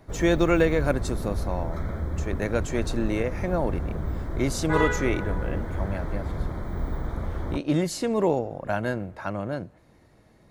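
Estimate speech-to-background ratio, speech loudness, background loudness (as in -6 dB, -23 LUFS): 4.5 dB, -27.5 LUFS, -32.0 LUFS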